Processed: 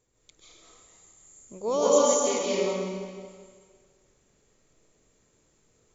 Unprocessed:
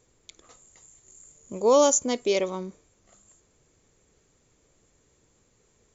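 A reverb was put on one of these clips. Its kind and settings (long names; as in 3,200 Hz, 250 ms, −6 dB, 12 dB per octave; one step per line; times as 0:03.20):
comb and all-pass reverb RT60 1.8 s, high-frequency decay 0.95×, pre-delay 105 ms, DRR −7.5 dB
level −9 dB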